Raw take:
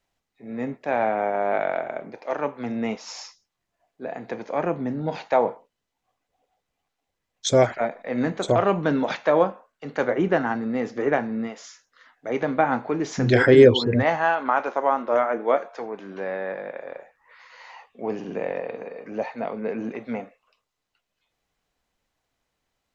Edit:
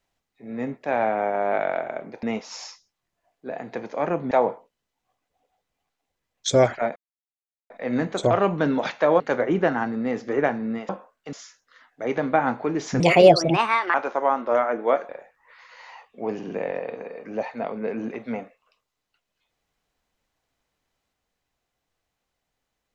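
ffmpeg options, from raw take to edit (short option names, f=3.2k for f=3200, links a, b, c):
-filter_complex "[0:a]asplit=10[a][b][c][d][e][f][g][h][i][j];[a]atrim=end=2.232[k];[b]atrim=start=2.788:end=4.872[l];[c]atrim=start=5.298:end=7.95,asetpts=PTS-STARTPTS,afade=t=out:st=2.648:d=0.004:c=hsin,apad=pad_dur=0.74[m];[d]atrim=start=7.95:end=9.452,asetpts=PTS-STARTPTS,afade=t=in:d=0.004:c=hsin[n];[e]atrim=start=9.888:end=11.582[o];[f]atrim=start=9.448:end=9.892[p];[g]atrim=start=11.578:end=13.254[q];[h]atrim=start=13.25:end=14.55,asetpts=PTS-STARTPTS,asetrate=60858,aresample=44100,atrim=end_sample=41543,asetpts=PTS-STARTPTS[r];[i]atrim=start=14.546:end=15.702[s];[j]atrim=start=16.898[t];[k][l]acrossfade=d=0.004:c1=hsin:c2=hsin[u];[m][n]concat=n=2:v=0:a=1[v];[u][v]acrossfade=d=0.004:c1=hsin:c2=hsin[w];[w][o]acrossfade=d=0.004:c1=hsin:c2=hsin[x];[x][p]acrossfade=d=0.004:c1=hsin:c2=hsin[y];[y][q]acrossfade=d=0.004:c1=hsin:c2=hsin[z];[z][r]acrossfade=d=0.004:c1=hsin:c2=hsin[aa];[aa][s]acrossfade=d=0.004:c1=hsin:c2=hsin[ab];[ab][t]acrossfade=d=0.004:c1=hsin:c2=hsin"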